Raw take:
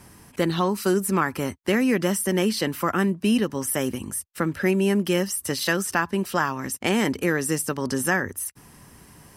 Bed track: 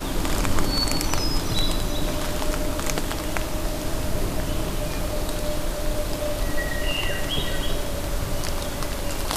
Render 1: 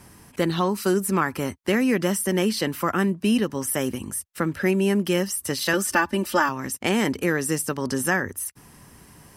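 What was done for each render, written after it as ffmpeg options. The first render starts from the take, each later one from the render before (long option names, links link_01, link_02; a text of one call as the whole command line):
ffmpeg -i in.wav -filter_complex "[0:a]asettb=1/sr,asplit=3[link_01][link_02][link_03];[link_01]atrim=end=5.734[link_04];[link_02]atrim=start=5.73:end=6.49,asetpts=PTS-STARTPTS,afade=type=in:duration=0.004:curve=qsin,afade=type=out:start_time=0.756:duration=0.004:curve=qsin,aecho=1:1:3.4:0.97,atrim=end_sample=33516[link_05];[link_03]atrim=start=6.486[link_06];[link_04][link_05]acrossfade=duration=0.004:curve1=hsin:curve2=qsin[link_07];[link_07][link_06]acrossfade=duration=0.004:curve1=qsin:curve2=hsin" out.wav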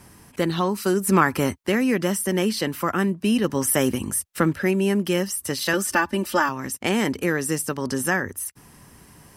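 ffmpeg -i in.wav -filter_complex "[0:a]asettb=1/sr,asplit=3[link_01][link_02][link_03];[link_01]atrim=end=3.444[link_04];[link_02]atrim=start=3.44:end=4.53,asetpts=PTS-STARTPTS,afade=type=in:duration=0.004:curve=qsin,afade=type=out:start_time=1.086:duration=0.004:curve=qsin,acontrast=22[link_05];[link_03]atrim=start=4.526[link_06];[link_04][link_05]acrossfade=duration=0.004:curve1=hsin:curve2=qsin[link_07];[link_07][link_06]acrossfade=duration=0.004:curve1=qsin:curve2=hsin,asplit=3[link_08][link_09][link_10];[link_08]atrim=end=1.072[link_11];[link_09]atrim=start=1.068:end=1.632,asetpts=PTS-STARTPTS,volume=5dB[link_12];[link_10]atrim=start=1.628[link_13];[link_11][link_12]acrossfade=duration=0.004:curve1=hsin:curve2=hsin[link_14];[link_14][link_13]acrossfade=duration=0.004:curve1=hsin:curve2=hsin" out.wav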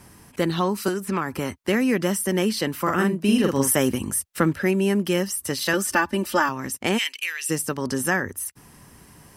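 ffmpeg -i in.wav -filter_complex "[0:a]asettb=1/sr,asplit=3[link_01][link_02][link_03];[link_01]atrim=end=0.884[link_04];[link_02]atrim=start=0.88:end=1.63,asetpts=PTS-STARTPTS,afade=type=in:duration=0.004:curve=qsin,afade=type=out:start_time=0.746:duration=0.004:curve=qsin,acrossover=split=750|4500[link_05][link_06][link_07];[link_05]acompressor=threshold=-25dB:ratio=4[link_08];[link_06]acompressor=threshold=-28dB:ratio=4[link_09];[link_07]acompressor=threshold=-42dB:ratio=4[link_10];[link_08][link_09][link_10]amix=inputs=3:normalize=0[link_11];[link_03]atrim=start=1.626[link_12];[link_04][link_11]acrossfade=duration=0.004:curve1=hsin:curve2=qsin[link_13];[link_13][link_12]acrossfade=duration=0.004:curve1=qsin:curve2=hsin,asettb=1/sr,asplit=3[link_14][link_15][link_16];[link_14]atrim=end=2.824[link_17];[link_15]atrim=start=2.82:end=3.73,asetpts=PTS-STARTPTS,afade=type=in:duration=0.004:curve=qsin,afade=type=out:start_time=0.906:duration=0.004:curve=qsin,asplit=2[link_18][link_19];[link_19]adelay=44,volume=-3dB[link_20];[link_18][link_20]amix=inputs=2:normalize=0,atrim=end_sample=40131[link_21];[link_16]atrim=start=3.726[link_22];[link_17][link_21]acrossfade=duration=0.004:curve1=hsin:curve2=qsin[link_23];[link_23][link_22]acrossfade=duration=0.004:curve1=qsin:curve2=hsin,asplit=3[link_24][link_25][link_26];[link_24]afade=type=out:start_time=6.97:duration=0.02[link_27];[link_25]highpass=frequency=2700:width_type=q:width=3.7,afade=type=in:start_time=6.97:duration=0.02,afade=type=out:start_time=7.49:duration=0.02[link_28];[link_26]afade=type=in:start_time=7.49:duration=0.02[link_29];[link_27][link_28][link_29]amix=inputs=3:normalize=0" out.wav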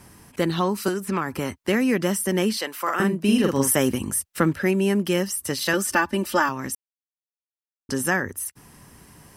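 ffmpeg -i in.wav -filter_complex "[0:a]asettb=1/sr,asplit=3[link_01][link_02][link_03];[link_01]atrim=end=2.574[link_04];[link_02]atrim=start=2.57:end=3,asetpts=PTS-STARTPTS,afade=type=in:duration=0.004:curve=qsin,afade=type=out:start_time=0.426:duration=0.004:curve=qsin,highpass=550[link_05];[link_03]atrim=start=2.996[link_06];[link_04][link_05]acrossfade=duration=0.004:curve1=hsin:curve2=qsin[link_07];[link_07][link_06]acrossfade=duration=0.004:curve1=qsin:curve2=hsin,asplit=3[link_08][link_09][link_10];[link_08]atrim=end=6.75,asetpts=PTS-STARTPTS,afade=type=out:start_time=6.746:duration=0.004:curve=hsin[link_11];[link_09]atrim=start=6.75:end=7.89,asetpts=PTS-STARTPTS,volume=0[link_12];[link_10]atrim=start=7.89,asetpts=PTS-STARTPTS,afade=type=in:duration=0.004:curve=hsin[link_13];[link_11][link_12][link_13]concat=n=3:v=0:a=1" out.wav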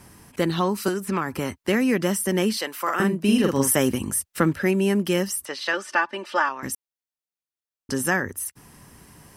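ffmpeg -i in.wav -filter_complex "[0:a]asettb=1/sr,asplit=3[link_01][link_02][link_03];[link_01]atrim=end=5.454[link_04];[link_02]atrim=start=5.45:end=6.63,asetpts=PTS-STARTPTS,afade=type=in:duration=0.004:curve=qsin,afade=type=out:start_time=1.176:duration=0.004:curve=qsin,highpass=530,lowpass=3900[link_05];[link_03]atrim=start=6.626[link_06];[link_04][link_05]acrossfade=duration=0.004:curve1=hsin:curve2=qsin[link_07];[link_07][link_06]acrossfade=duration=0.004:curve1=qsin:curve2=hsin" out.wav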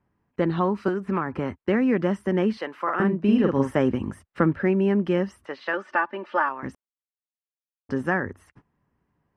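ffmpeg -i in.wav -af "agate=range=-22dB:threshold=-43dB:ratio=16:detection=peak,lowpass=1700" out.wav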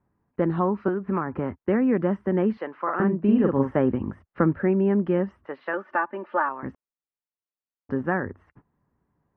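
ffmpeg -i in.wav -af "lowpass=1600" out.wav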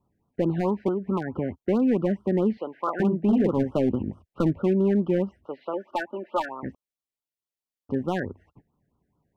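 ffmpeg -i in.wav -af "asoftclip=type=hard:threshold=-16dB,afftfilt=real='re*(1-between(b*sr/1024,1000*pow(2100/1000,0.5+0.5*sin(2*PI*4.6*pts/sr))/1.41,1000*pow(2100/1000,0.5+0.5*sin(2*PI*4.6*pts/sr))*1.41))':imag='im*(1-between(b*sr/1024,1000*pow(2100/1000,0.5+0.5*sin(2*PI*4.6*pts/sr))/1.41,1000*pow(2100/1000,0.5+0.5*sin(2*PI*4.6*pts/sr))*1.41))':win_size=1024:overlap=0.75" out.wav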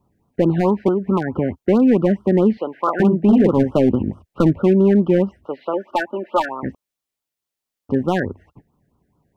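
ffmpeg -i in.wav -af "volume=8dB" out.wav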